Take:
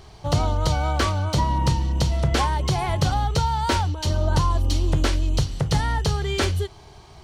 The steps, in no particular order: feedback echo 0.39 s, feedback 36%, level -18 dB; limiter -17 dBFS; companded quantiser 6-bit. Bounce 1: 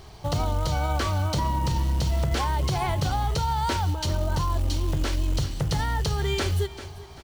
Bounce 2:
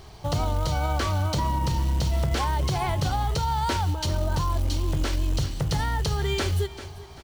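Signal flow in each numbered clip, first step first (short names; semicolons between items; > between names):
feedback echo > companded quantiser > limiter; feedback echo > limiter > companded quantiser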